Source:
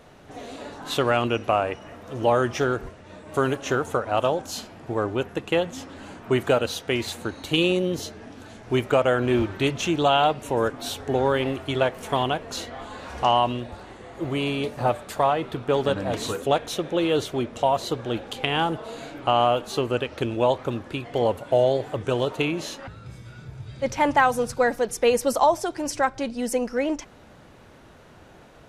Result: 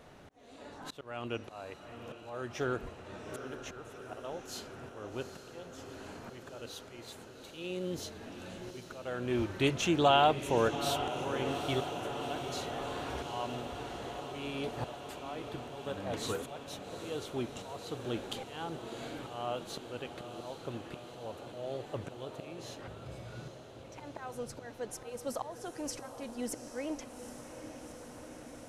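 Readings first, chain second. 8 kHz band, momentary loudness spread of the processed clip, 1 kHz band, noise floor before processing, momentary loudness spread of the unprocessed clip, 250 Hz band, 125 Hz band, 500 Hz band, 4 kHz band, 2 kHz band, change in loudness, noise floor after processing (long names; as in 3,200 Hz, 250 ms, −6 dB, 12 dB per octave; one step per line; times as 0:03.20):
−9.0 dB, 14 LU, −12.5 dB, −49 dBFS, 16 LU, −11.5 dB, −11.5 dB, −13.5 dB, −10.5 dB, −13.0 dB, −13.0 dB, −51 dBFS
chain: volume swells 773 ms
feedback delay with all-pass diffusion 801 ms, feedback 76%, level −10 dB
level −5 dB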